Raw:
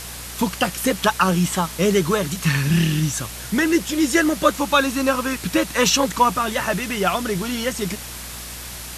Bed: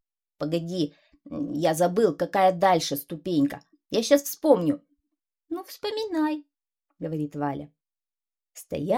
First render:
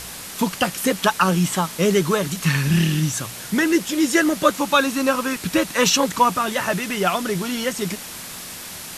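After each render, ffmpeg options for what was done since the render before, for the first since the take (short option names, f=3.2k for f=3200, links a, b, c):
-af "bandreject=f=60:t=h:w=4,bandreject=f=120:t=h:w=4"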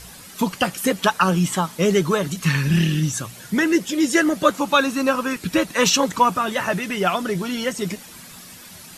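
-af "afftdn=nr=10:nf=-35"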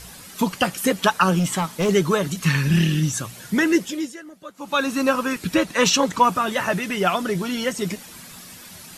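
-filter_complex "[0:a]asettb=1/sr,asplit=3[a][b][c];[a]atrim=end=1.394[d];[b]atrim=start=1.39:end=1.89,asetpts=PTS-STARTPTS,afade=t=in:d=0.004:c=qsin,afade=t=out:st=0.496:d=0.004:c=qsin,asoftclip=type=hard:threshold=-17dB[e];[c]atrim=start=1.886[f];[d][e]acrossfade=d=0.004:c1=hsin:c2=qsin[g];[g][f]acrossfade=d=0.004:c1=qsin:c2=hsin,asettb=1/sr,asplit=3[h][i][j];[h]atrim=end=5.544[k];[i]atrim=start=5.54:end=6.24,asetpts=PTS-STARTPTS,afade=t=in:d=0.004:c=qsin,afade=t=out:st=0.696:d=0.004:c=qsin,highshelf=f=12k:g=-9.5[l];[j]atrim=start=6.236[m];[k][l]acrossfade=d=0.004:c1=hsin:c2=qsin[n];[n][m]acrossfade=d=0.004:c1=qsin:c2=hsin,asplit=3[o][p][q];[o]atrim=end=4.16,asetpts=PTS-STARTPTS,afade=t=out:st=3.76:d=0.4:silence=0.0794328[r];[p]atrim=start=4.16:end=4.55,asetpts=PTS-STARTPTS,volume=-22dB[s];[q]atrim=start=4.55,asetpts=PTS-STARTPTS,afade=t=in:d=0.4:silence=0.0794328[t];[r][s][t]concat=n=3:v=0:a=1"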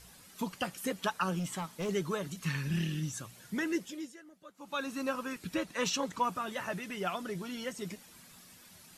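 -af "volume=-14.5dB"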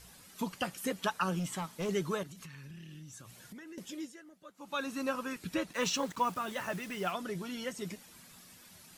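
-filter_complex "[0:a]asettb=1/sr,asplit=3[a][b][c];[a]atrim=end=2.234[d];[b]atrim=start=2.23:end=3.78,asetpts=PTS-STARTPTS,afade=t=in:d=0.004:c=qsin,afade=t=out:st=1.546:d=0.004:c=qsin,acompressor=threshold=-45dB:ratio=20:attack=3.2:release=140:knee=1:detection=peak[e];[c]atrim=start=3.776[f];[d][e]acrossfade=d=0.004:c1=hsin:c2=qsin[g];[g][f]acrossfade=d=0.004:c1=qsin:c2=hsin,asettb=1/sr,asplit=3[h][i][j];[h]atrim=end=5.734[k];[i]atrim=start=5.73:end=7.12,asetpts=PTS-STARTPTS,afade=t=in:d=0.004:c=qsin,afade=t=out:st=1.386:d=0.004:c=qsin,acrusher=bits=7:mix=0:aa=0.5[l];[j]atrim=start=7.116[m];[k][l]acrossfade=d=0.004:c1=hsin:c2=qsin[n];[n][m]acrossfade=d=0.004:c1=qsin:c2=hsin"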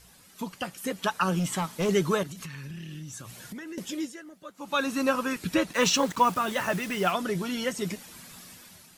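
-af "dynaudnorm=f=770:g=3:m=9dB"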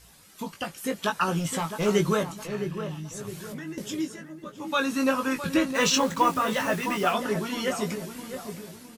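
-filter_complex "[0:a]asplit=2[a][b];[b]adelay=19,volume=-5.5dB[c];[a][c]amix=inputs=2:normalize=0,asplit=2[d][e];[e]adelay=661,lowpass=f=1.2k:p=1,volume=-8dB,asplit=2[f][g];[g]adelay=661,lowpass=f=1.2k:p=1,volume=0.44,asplit=2[h][i];[i]adelay=661,lowpass=f=1.2k:p=1,volume=0.44,asplit=2[j][k];[k]adelay=661,lowpass=f=1.2k:p=1,volume=0.44,asplit=2[l][m];[m]adelay=661,lowpass=f=1.2k:p=1,volume=0.44[n];[d][f][h][j][l][n]amix=inputs=6:normalize=0"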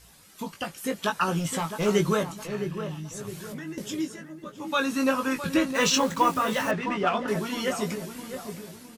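-filter_complex "[0:a]asettb=1/sr,asplit=3[a][b][c];[a]atrim=end=6.714[d];[b]atrim=start=6.71:end=7.28,asetpts=PTS-STARTPTS,afade=t=in:d=0.004:c=qsin,afade=t=out:st=0.566:d=0.004:c=qsin,adynamicsmooth=sensitivity=1:basefreq=3.3k[e];[c]atrim=start=7.276[f];[d][e]acrossfade=d=0.004:c1=hsin:c2=qsin[g];[g][f]acrossfade=d=0.004:c1=qsin:c2=hsin"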